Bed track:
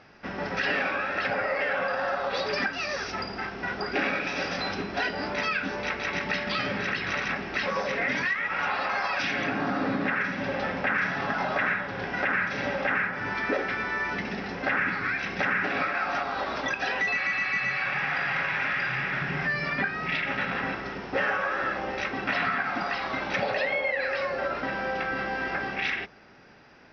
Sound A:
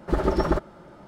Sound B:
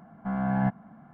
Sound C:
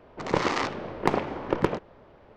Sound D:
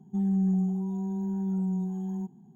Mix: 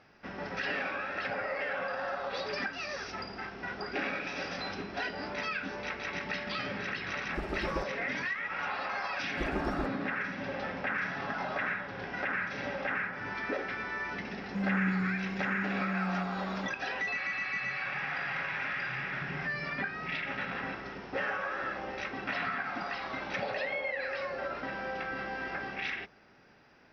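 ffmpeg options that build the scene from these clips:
-filter_complex "[1:a]asplit=2[s0][s1];[0:a]volume=0.447[s2];[s0]atrim=end=1.07,asetpts=PTS-STARTPTS,volume=0.2,afade=t=in:d=0.004:c=hsin,afade=t=out:st=1.066:d=0.004:c=hsin,adelay=7250[s3];[s1]atrim=end=1.07,asetpts=PTS-STARTPTS,volume=0.224,afade=t=in:d=0.004:c=hsin,afade=t=out:st=1.066:d=0.004:c=hsin,adelay=9280[s4];[4:a]atrim=end=2.55,asetpts=PTS-STARTPTS,volume=0.501,afade=t=in:d=0.004:c=hsin,afade=t=out:st=2.546:d=0.004:c=hsin,adelay=14410[s5];[s2][s3][s4][s5]amix=inputs=4:normalize=0"

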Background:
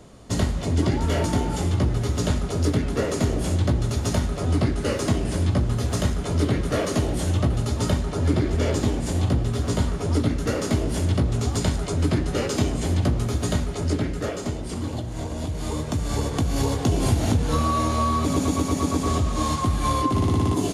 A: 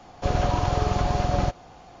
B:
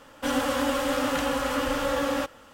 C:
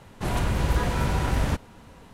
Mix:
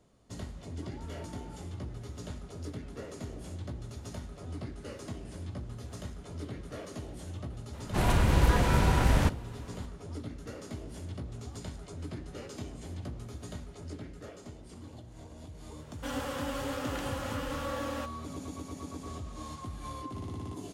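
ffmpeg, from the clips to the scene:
-filter_complex "[0:a]volume=0.119[s0];[3:a]atrim=end=2.13,asetpts=PTS-STARTPTS,afade=t=in:d=0.004:c=hsin,afade=t=out:st=2.126:d=0.004:c=hsin,adelay=7730[s1];[2:a]atrim=end=2.53,asetpts=PTS-STARTPTS,volume=0.299,afade=t=in:d=0.004:c=hsin,afade=t=out:st=2.526:d=0.004:c=hsin,adelay=15800[s2];[s0][s1][s2]amix=inputs=3:normalize=0"

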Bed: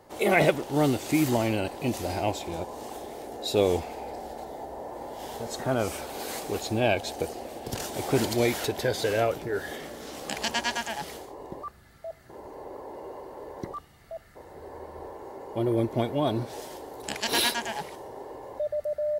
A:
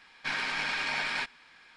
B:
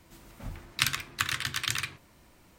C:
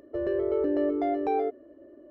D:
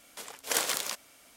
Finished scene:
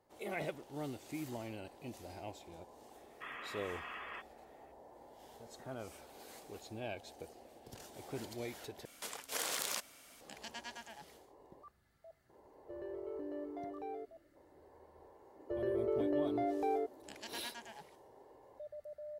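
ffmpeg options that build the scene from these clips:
-filter_complex "[3:a]asplit=2[s0][s1];[0:a]volume=0.112[s2];[1:a]lowpass=f=3000:t=q:w=0.5098,lowpass=f=3000:t=q:w=0.6013,lowpass=f=3000:t=q:w=0.9,lowpass=f=3000:t=q:w=2.563,afreqshift=-3500[s3];[4:a]acompressor=threshold=0.02:ratio=12:attack=4.7:release=48:knee=1:detection=peak[s4];[s2]asplit=2[s5][s6];[s5]atrim=end=8.854[s7];[s4]atrim=end=1.36,asetpts=PTS-STARTPTS,volume=0.841[s8];[s6]atrim=start=10.206[s9];[s3]atrim=end=1.76,asetpts=PTS-STARTPTS,volume=0.188,afade=t=in:d=0.004:c=hsin,afade=t=out:st=1.756:d=0.004:c=hsin,adelay=2960[s10];[s0]atrim=end=2.1,asetpts=PTS-STARTPTS,volume=0.133,afade=t=in:d=0.004:c=hsin,afade=t=out:st=2.096:d=0.004:c=hsin,adelay=12550[s11];[s1]atrim=end=2.1,asetpts=PTS-STARTPTS,volume=0.398,afade=t=in:d=0.004:c=hsin,afade=t=out:st=2.096:d=0.004:c=hsin,adelay=15360[s12];[s7][s8]acrossfade=d=0.004:c1=hsin:c2=hsin[s13];[s13][s9]acrossfade=d=0.004:c1=hsin:c2=hsin[s14];[s14][s10][s11][s12]amix=inputs=4:normalize=0"

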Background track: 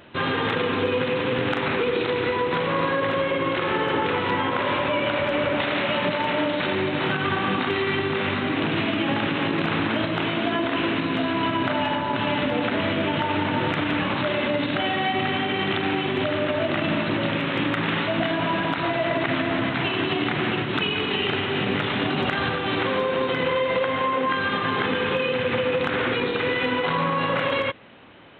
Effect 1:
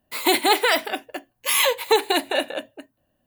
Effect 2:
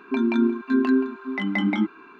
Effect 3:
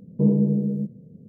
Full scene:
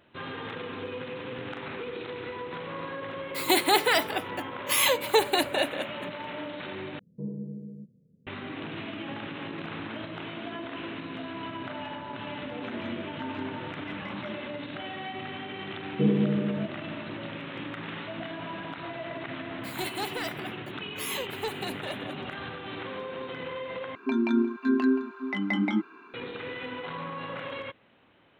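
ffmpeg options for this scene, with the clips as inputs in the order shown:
-filter_complex "[1:a]asplit=2[s0][s1];[3:a]asplit=2[s2][s3];[2:a]asplit=2[s4][s5];[0:a]volume=0.211[s6];[s2]equalizer=f=760:t=o:w=0.22:g=-9.5[s7];[s3]equalizer=f=350:w=1.5:g=9.5[s8];[s1]asoftclip=type=tanh:threshold=0.299[s9];[s5]highpass=130[s10];[s6]asplit=3[s11][s12][s13];[s11]atrim=end=6.994[s14];[s7]atrim=end=1.28,asetpts=PTS-STARTPTS,volume=0.141[s15];[s12]atrim=start=8.266:end=23.954[s16];[s10]atrim=end=2.19,asetpts=PTS-STARTPTS,volume=0.668[s17];[s13]atrim=start=26.136[s18];[s0]atrim=end=3.26,asetpts=PTS-STARTPTS,volume=0.631,afade=t=in:d=0.004:c=hsin,afade=t=out:st=3.256:d=0.004:c=hsin,adelay=3230[s19];[s4]atrim=end=2.19,asetpts=PTS-STARTPTS,volume=0.126,afade=t=in:d=0.004:c=hsin,afade=t=out:st=2.186:d=0.004:c=hsin,adelay=12500[s20];[s8]atrim=end=1.28,asetpts=PTS-STARTPTS,volume=0.422,afade=t=in:d=0.004:c=hsin,afade=t=out:st=1.276:d=0.004:c=hsin,adelay=15800[s21];[s9]atrim=end=3.26,asetpts=PTS-STARTPTS,volume=0.2,afade=t=in:d=0.004:c=hsin,afade=t=out:st=3.256:d=0.004:c=hsin,adelay=19520[s22];[s14][s15]acrossfade=d=0.004:c1=hsin:c2=hsin[s23];[s23][s16]acrossfade=d=0.004:c1=hsin:c2=hsin[s24];[s24][s17]acrossfade=d=0.004:c1=hsin:c2=hsin[s25];[s25][s18]acrossfade=d=0.004:c1=hsin:c2=hsin[s26];[s26][s19][s20][s21][s22]amix=inputs=5:normalize=0"

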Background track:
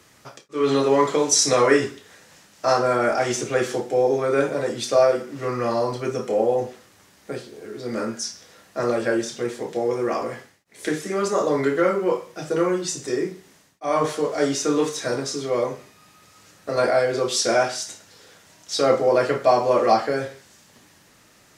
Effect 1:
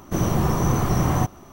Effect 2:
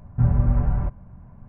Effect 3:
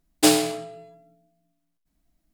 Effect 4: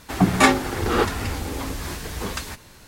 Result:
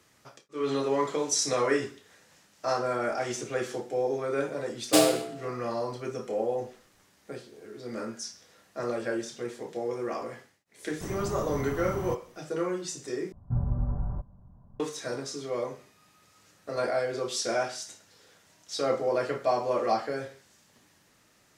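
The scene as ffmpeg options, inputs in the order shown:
-filter_complex "[0:a]volume=0.355[s0];[2:a]lowpass=f=1300:w=0.5412,lowpass=f=1300:w=1.3066[s1];[s0]asplit=2[s2][s3];[s2]atrim=end=13.324[s4];[s1]atrim=end=1.48,asetpts=PTS-STARTPTS,volume=0.335[s5];[s3]atrim=start=14.796[s6];[3:a]atrim=end=2.33,asetpts=PTS-STARTPTS,volume=0.562,afade=t=in:d=0.004:c=hsin,afade=t=out:st=2.326:d=0.004:c=hsin,adelay=4700[s7];[1:a]atrim=end=1.52,asetpts=PTS-STARTPTS,volume=0.178,afade=t=in:d=0.004:c=hsin,afade=t=out:st=1.516:d=0.004:c=hsin,adelay=10890[s8];[s4][s5]acrossfade=d=0.004:c1=hsin:c2=hsin[s9];[s9][s6]acrossfade=d=0.004:c1=hsin:c2=hsin[s10];[s10][s7][s8]amix=inputs=3:normalize=0"

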